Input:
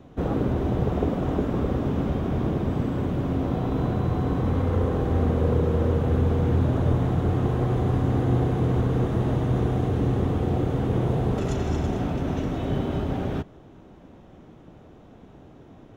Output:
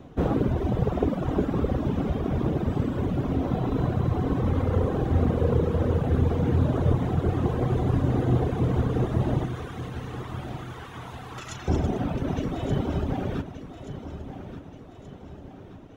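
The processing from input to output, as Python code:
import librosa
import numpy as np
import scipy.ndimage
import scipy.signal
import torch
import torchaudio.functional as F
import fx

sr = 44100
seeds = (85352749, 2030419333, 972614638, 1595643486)

y = fx.highpass(x, sr, hz=970.0, slope=24, at=(9.46, 11.68))
y = fx.dereverb_blind(y, sr, rt60_s=1.9)
y = fx.echo_feedback(y, sr, ms=1178, feedback_pct=47, wet_db=-11.5)
y = F.gain(torch.from_numpy(y), 2.5).numpy()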